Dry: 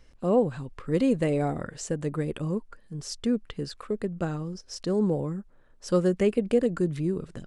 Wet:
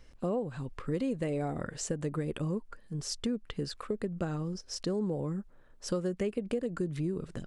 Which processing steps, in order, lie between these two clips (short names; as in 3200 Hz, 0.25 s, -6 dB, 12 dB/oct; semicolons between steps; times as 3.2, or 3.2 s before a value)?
compressor 6:1, threshold -29 dBFS, peak gain reduction 12 dB